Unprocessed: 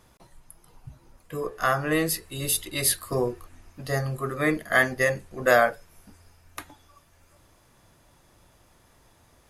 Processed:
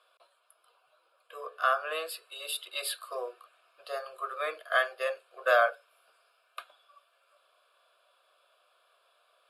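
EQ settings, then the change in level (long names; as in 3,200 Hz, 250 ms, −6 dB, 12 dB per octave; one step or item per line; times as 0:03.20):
high-pass filter 620 Hz 24 dB per octave
high-frequency loss of the air 61 metres
phaser with its sweep stopped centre 1,300 Hz, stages 8
0.0 dB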